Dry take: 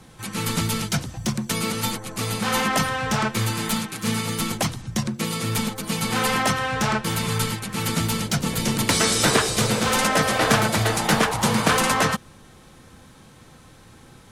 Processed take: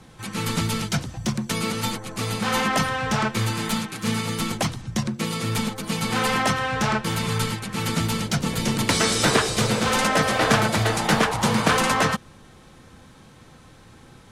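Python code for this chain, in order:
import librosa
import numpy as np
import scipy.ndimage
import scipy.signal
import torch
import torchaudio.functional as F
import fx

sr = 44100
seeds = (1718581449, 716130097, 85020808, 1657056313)

y = fx.high_shelf(x, sr, hz=10000.0, db=-9.0)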